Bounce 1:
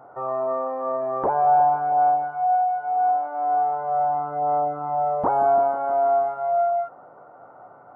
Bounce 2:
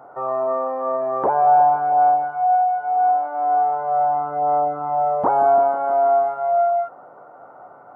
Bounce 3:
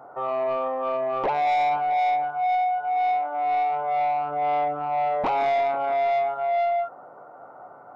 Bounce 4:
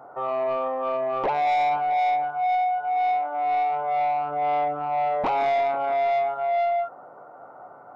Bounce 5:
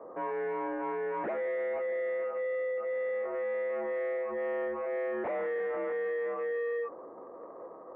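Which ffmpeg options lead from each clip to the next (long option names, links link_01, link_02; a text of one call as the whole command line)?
ffmpeg -i in.wav -af "highpass=frequency=170:poles=1,volume=3.5dB" out.wav
ffmpeg -i in.wav -af "asoftclip=type=tanh:threshold=-18dB,volume=-1.5dB" out.wav
ffmpeg -i in.wav -af anull out.wav
ffmpeg -i in.wav -af "aeval=exprs='(tanh(35.5*val(0)+0.3)-tanh(0.3))/35.5':channel_layout=same,highpass=frequency=510:width_type=q:width=0.5412,highpass=frequency=510:width_type=q:width=1.307,lowpass=frequency=2200:width_type=q:width=0.5176,lowpass=frequency=2200:width_type=q:width=0.7071,lowpass=frequency=2200:width_type=q:width=1.932,afreqshift=-220" out.wav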